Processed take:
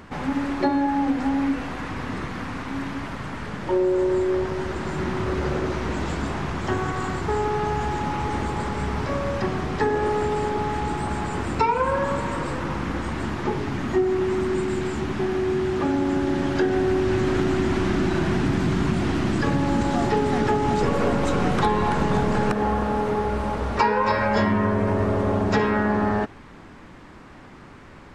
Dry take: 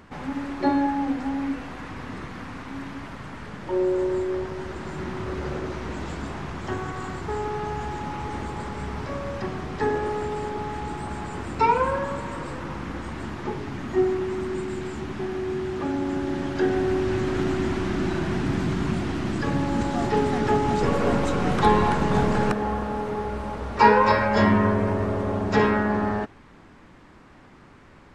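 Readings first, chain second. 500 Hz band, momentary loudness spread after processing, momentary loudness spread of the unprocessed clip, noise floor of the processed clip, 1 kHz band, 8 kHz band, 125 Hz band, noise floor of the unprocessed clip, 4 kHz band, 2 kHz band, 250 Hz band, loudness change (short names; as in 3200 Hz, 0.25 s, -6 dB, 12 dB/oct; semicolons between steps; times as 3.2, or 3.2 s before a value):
+2.0 dB, 7 LU, 13 LU, -44 dBFS, +0.5 dB, +3.5 dB, +2.5 dB, -50 dBFS, +2.5 dB, +1.5 dB, +2.5 dB, +1.5 dB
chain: compressor 6:1, threshold -23 dBFS, peak gain reduction 12.5 dB; gain +5.5 dB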